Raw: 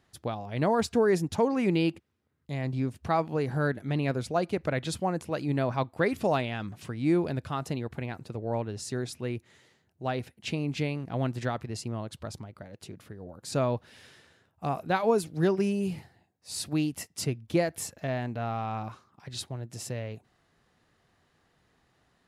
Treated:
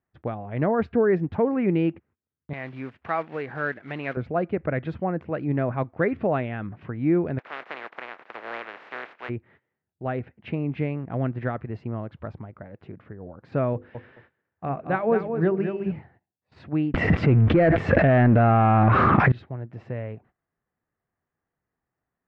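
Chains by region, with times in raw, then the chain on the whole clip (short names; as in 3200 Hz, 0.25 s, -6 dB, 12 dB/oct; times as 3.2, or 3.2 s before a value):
2.53–4.17 block floating point 5-bit + tilt +4.5 dB/oct
7.38–9.28 spectral contrast lowered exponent 0.16 + HPF 440 Hz
13.73–15.92 notches 50/100/150/200/250/300/350/400/450/500 Hz + feedback echo 0.217 s, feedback 18%, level -7.5 dB
16.94–19.32 power-law curve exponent 0.7 + fast leveller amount 100%
whole clip: LPF 2100 Hz 24 dB/oct; gate -56 dBFS, range -19 dB; dynamic EQ 930 Hz, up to -6 dB, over -44 dBFS, Q 2.5; gain +3.5 dB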